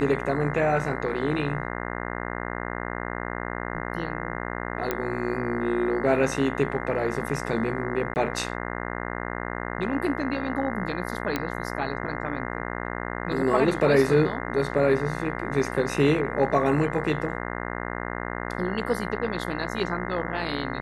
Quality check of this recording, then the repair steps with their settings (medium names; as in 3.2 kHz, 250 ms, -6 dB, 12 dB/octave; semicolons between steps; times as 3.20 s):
buzz 60 Hz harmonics 35 -32 dBFS
4.91 s: pop -11 dBFS
8.14–8.16 s: dropout 19 ms
11.36 s: pop -11 dBFS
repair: de-click; de-hum 60 Hz, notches 35; interpolate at 8.14 s, 19 ms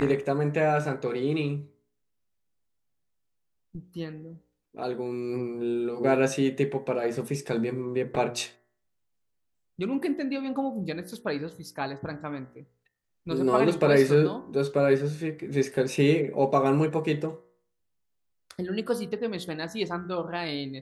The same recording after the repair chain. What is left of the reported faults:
nothing left